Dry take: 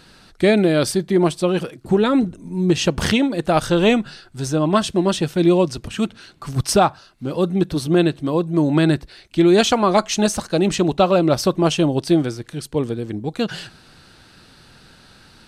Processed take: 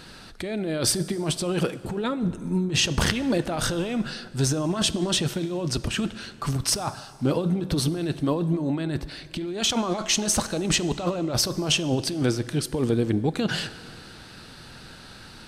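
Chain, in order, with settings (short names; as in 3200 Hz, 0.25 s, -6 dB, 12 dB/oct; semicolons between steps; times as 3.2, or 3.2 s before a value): negative-ratio compressor -23 dBFS, ratio -1; plate-style reverb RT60 2.3 s, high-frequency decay 0.7×, DRR 14.5 dB; gain -2 dB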